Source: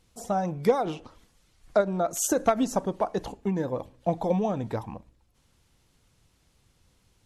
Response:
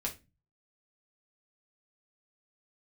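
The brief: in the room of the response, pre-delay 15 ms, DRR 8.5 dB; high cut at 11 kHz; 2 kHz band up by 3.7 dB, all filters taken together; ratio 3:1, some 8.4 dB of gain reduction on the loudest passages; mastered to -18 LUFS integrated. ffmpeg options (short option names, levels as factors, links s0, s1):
-filter_complex "[0:a]lowpass=11000,equalizer=f=2000:t=o:g=5,acompressor=threshold=0.0398:ratio=3,asplit=2[s0][s1];[1:a]atrim=start_sample=2205,adelay=15[s2];[s1][s2]afir=irnorm=-1:irlink=0,volume=0.282[s3];[s0][s3]amix=inputs=2:normalize=0,volume=5.01"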